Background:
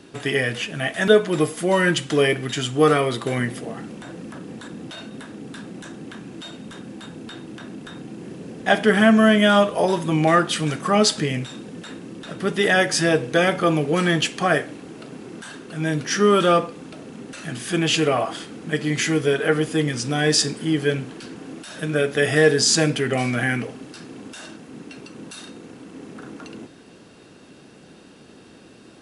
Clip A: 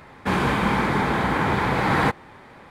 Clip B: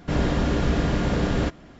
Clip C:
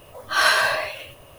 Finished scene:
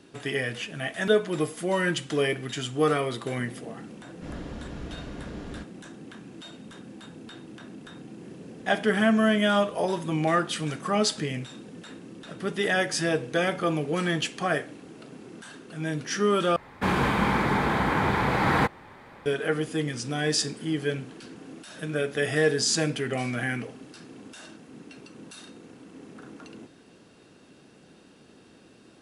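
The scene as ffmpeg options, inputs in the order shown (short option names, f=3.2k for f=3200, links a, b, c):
-filter_complex "[0:a]volume=-7dB,asplit=2[a][b];[a]atrim=end=16.564[c];[1:a]atrim=end=2.7,asetpts=PTS-STARTPTS,volume=-2.5dB[d];[b]atrim=start=19.256[e];[2:a]atrim=end=1.79,asetpts=PTS-STARTPTS,volume=-16.5dB,afade=t=in:d=0.004:c=hsin,afade=t=out:st=1.786:d=0.004:c=hsin,adelay=4140[f];[c][d]acrossfade=d=0.004:c1=hsin:c2=hsin[g];[g][e]acrossfade=d=0.004:c1=hsin:c2=hsin[h];[h][f]amix=inputs=2:normalize=0"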